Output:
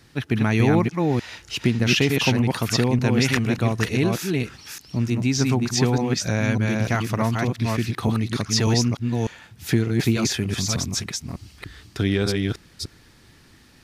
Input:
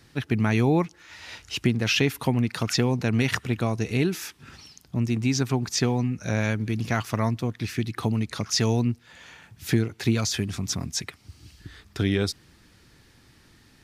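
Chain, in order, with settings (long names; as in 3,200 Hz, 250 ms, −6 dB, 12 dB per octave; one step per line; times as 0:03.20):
delay that plays each chunk backwards 299 ms, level −2.5 dB
level +2 dB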